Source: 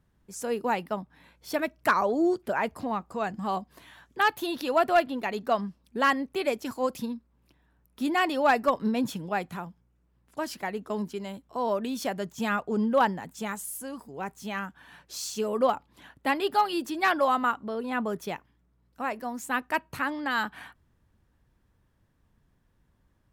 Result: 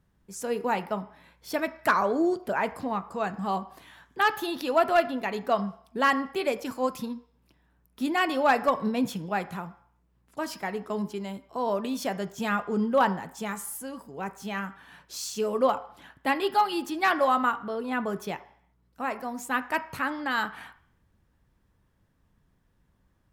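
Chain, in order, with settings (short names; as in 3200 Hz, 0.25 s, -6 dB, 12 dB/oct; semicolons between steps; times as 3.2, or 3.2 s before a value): on a send: bell 4900 Hz +6.5 dB + reverb RT60 0.60 s, pre-delay 3 ms, DRR 9.5 dB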